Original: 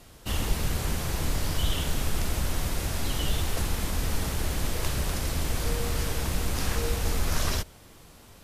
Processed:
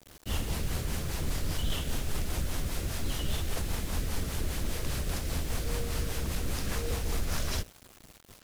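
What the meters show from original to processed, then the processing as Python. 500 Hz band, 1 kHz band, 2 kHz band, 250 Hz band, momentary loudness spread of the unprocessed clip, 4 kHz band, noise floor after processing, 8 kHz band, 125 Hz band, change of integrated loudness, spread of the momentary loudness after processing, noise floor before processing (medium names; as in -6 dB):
-4.5 dB, -6.0 dB, -5.0 dB, -3.5 dB, 2 LU, -4.5 dB, -56 dBFS, -4.5 dB, -4.0 dB, -4.5 dB, 2 LU, -51 dBFS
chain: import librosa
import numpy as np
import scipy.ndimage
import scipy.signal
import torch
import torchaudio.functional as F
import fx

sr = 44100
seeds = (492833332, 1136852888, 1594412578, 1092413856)

y = fx.rotary(x, sr, hz=5.0)
y = fx.quant_dither(y, sr, seeds[0], bits=8, dither='none')
y = 10.0 ** (-21.0 / 20.0) * (np.abs((y / 10.0 ** (-21.0 / 20.0) + 3.0) % 4.0 - 2.0) - 1.0)
y = F.gain(torch.from_numpy(y), -2.0).numpy()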